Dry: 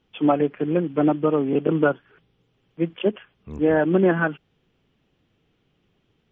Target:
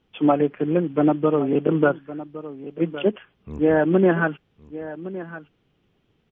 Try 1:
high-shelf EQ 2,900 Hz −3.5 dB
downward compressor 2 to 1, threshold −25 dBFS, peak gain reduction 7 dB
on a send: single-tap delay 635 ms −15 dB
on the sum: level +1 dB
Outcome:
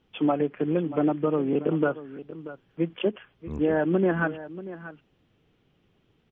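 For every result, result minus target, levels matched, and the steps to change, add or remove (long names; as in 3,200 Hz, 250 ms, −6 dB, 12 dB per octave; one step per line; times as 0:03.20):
echo 477 ms early; downward compressor: peak gain reduction +7 dB
change: single-tap delay 1,112 ms −15 dB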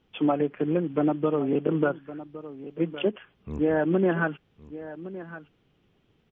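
downward compressor: peak gain reduction +7 dB
remove: downward compressor 2 to 1, threshold −25 dBFS, peak gain reduction 7 dB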